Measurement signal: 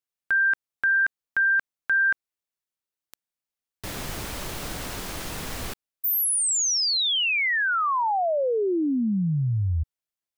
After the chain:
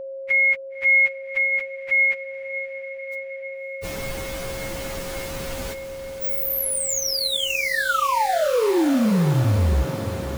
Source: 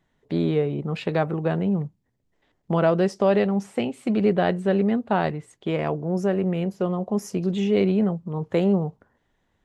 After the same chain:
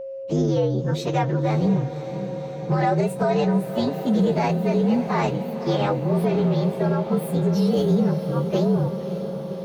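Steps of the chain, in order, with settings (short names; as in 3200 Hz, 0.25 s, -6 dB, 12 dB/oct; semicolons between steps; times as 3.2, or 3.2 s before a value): inharmonic rescaling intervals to 117%; whine 540 Hz -36 dBFS; limiter -18.5 dBFS; on a send: diffused feedback echo 0.566 s, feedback 75%, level -12 dB; on the sum: gain +5.5 dB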